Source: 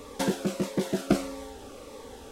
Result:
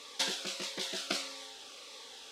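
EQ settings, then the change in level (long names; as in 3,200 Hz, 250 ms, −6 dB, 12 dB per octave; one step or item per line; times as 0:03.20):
resonant band-pass 4,000 Hz, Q 1.4
+7.5 dB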